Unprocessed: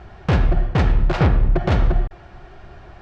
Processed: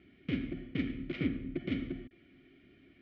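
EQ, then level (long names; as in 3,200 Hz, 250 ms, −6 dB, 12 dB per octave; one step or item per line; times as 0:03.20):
formant filter i
high-frequency loss of the air 86 metres
notch filter 1,600 Hz, Q 13
0.0 dB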